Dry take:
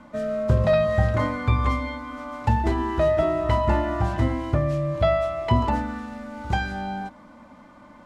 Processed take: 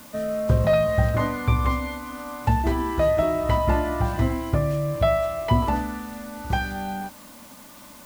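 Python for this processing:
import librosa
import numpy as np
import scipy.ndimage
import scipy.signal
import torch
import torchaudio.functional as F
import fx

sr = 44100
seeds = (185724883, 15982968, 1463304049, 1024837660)

y = fx.quant_dither(x, sr, seeds[0], bits=8, dither='triangular')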